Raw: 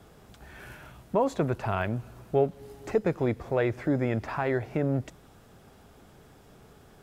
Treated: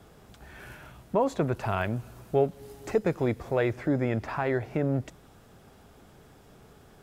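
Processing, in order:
0:01.56–0:03.73: high-shelf EQ 4,600 Hz +5.5 dB

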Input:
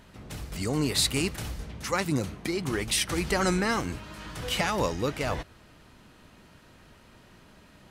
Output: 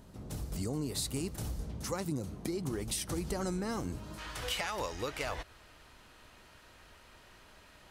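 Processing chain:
parametric band 2,200 Hz −12 dB 2 octaves, from 0:04.18 180 Hz
downward compressor 4 to 1, threshold −33 dBFS, peak gain reduction 9 dB

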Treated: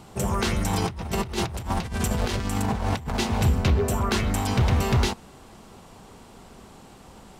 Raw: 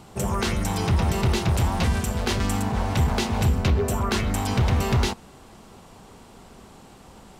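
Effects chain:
0:00.73–0:03.19: compressor whose output falls as the input rises −26 dBFS, ratio −0.5

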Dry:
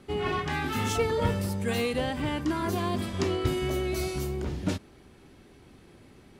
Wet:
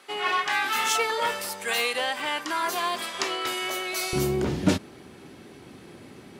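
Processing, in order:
high-pass filter 870 Hz 12 dB per octave, from 0:04.13 130 Hz
level +8.5 dB

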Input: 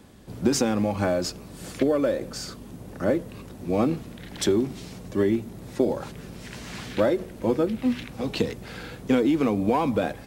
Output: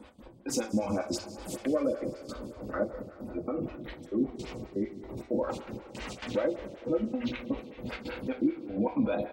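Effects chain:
gate on every frequency bin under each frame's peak −30 dB strong
parametric band 2,400 Hz +4.5 dB 1.1 octaves
notch filter 1,700 Hz, Q 15
in parallel at −2 dB: compressor whose output falls as the input rises −24 dBFS, ratio −0.5
on the sum: brickwall limiter −17 dBFS, peak gain reduction 9 dB
tempo change 1.1×
gate pattern "x.x..xx.xx" 164 BPM −24 dB
on a send: single-tap delay 990 ms −23 dB
on the sum: coupled-rooms reverb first 0.29 s, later 3.8 s, from −18 dB, DRR 1.5 dB
phaser with staggered stages 5.2 Hz
level −4.5 dB

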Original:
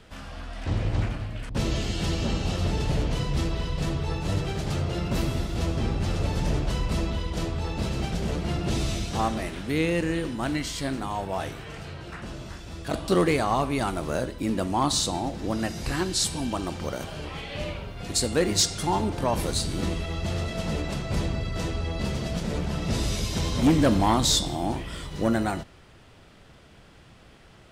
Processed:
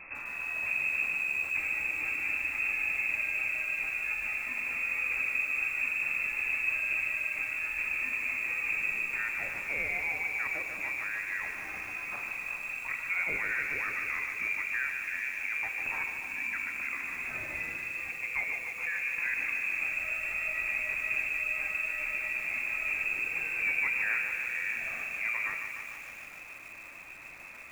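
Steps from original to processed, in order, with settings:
downward compressor 2 to 1, threshold −46 dBFS, peak gain reduction 16 dB
0:17.45–0:19.17: high-frequency loss of the air 180 metres
convolution reverb RT60 2.8 s, pre-delay 4 ms, DRR 10.5 dB
voice inversion scrambler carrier 2,600 Hz
feedback echo at a low word length 148 ms, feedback 80%, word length 9 bits, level −6.5 dB
level +3.5 dB

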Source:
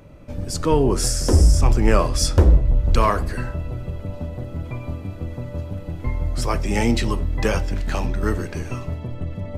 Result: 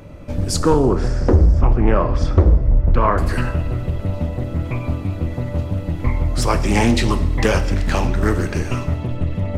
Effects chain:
0:00.59–0:03.18: low-pass filter 1,700 Hz 12 dB per octave
downward compressor 2.5 to 1, threshold −18 dBFS, peak gain reduction 7 dB
coupled-rooms reverb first 0.97 s, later 2.5 s, DRR 11 dB
highs frequency-modulated by the lows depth 0.54 ms
level +6.5 dB

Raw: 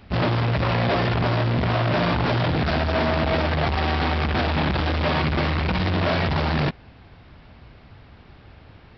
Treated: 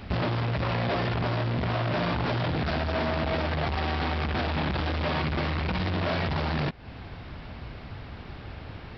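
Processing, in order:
downward compressor 6 to 1, threshold −33 dBFS, peak gain reduction 12.5 dB
level +6.5 dB

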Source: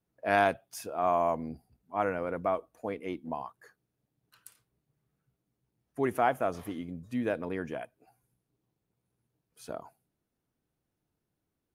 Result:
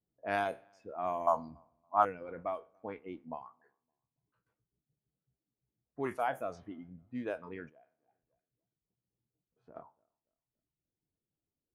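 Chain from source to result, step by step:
peak hold with a decay on every bin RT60 0.40 s
low-pass that shuts in the quiet parts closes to 690 Hz, open at −23 dBFS
0:01.27–0:02.05: drawn EQ curve 290 Hz 0 dB, 450 Hz −5 dB, 670 Hz +9 dB, 1,300 Hz +14 dB, 2,100 Hz −7 dB, 4,100 Hz +13 dB, 6,700 Hz +8 dB
on a send: feedback echo with a low-pass in the loop 282 ms, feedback 29%, low-pass 3,600 Hz, level −23.5 dB
0:07.69–0:09.76: on the sum: downward compressor 2.5 to 1, threshold −53 dBFS, peak gain reduction 14.5 dB
reverb reduction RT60 1.1 s
level −7 dB

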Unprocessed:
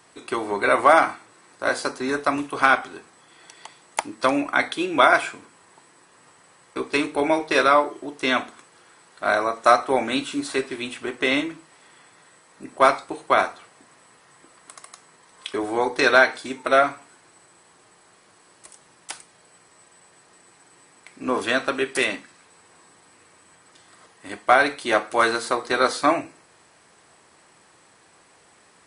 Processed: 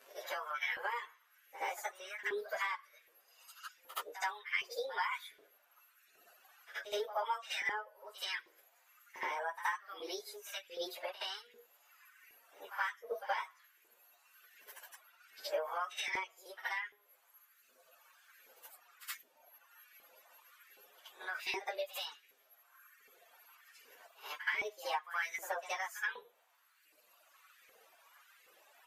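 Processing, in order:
phase-vocoder pitch shift without resampling +6.5 semitones
reverb reduction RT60 1.7 s
downward compressor 8 to 1, threshold −35 dBFS, peak gain reduction 21.5 dB
auto-filter high-pass saw up 1.3 Hz 390–2,100 Hz
echo ahead of the sound 73 ms −13 dB
level −3.5 dB

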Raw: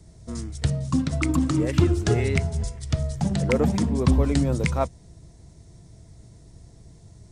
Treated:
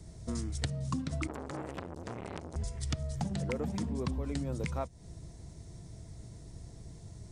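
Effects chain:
downward compressor 10 to 1, threshold −31 dBFS, peak gain reduction 18.5 dB
0:01.27–0:02.56: saturating transformer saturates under 1,600 Hz

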